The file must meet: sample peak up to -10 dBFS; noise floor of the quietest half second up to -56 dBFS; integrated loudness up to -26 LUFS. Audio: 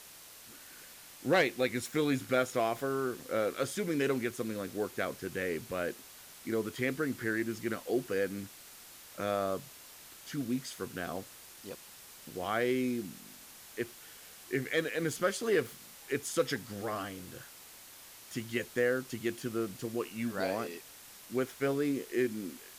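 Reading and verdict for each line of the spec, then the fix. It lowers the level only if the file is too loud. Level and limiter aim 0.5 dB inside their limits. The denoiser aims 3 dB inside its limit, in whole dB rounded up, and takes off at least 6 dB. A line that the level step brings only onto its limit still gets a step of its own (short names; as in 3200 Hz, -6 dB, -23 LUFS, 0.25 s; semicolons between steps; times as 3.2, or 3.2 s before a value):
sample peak -17.0 dBFS: OK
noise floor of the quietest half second -53 dBFS: fail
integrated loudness -34.0 LUFS: OK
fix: denoiser 6 dB, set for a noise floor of -53 dBFS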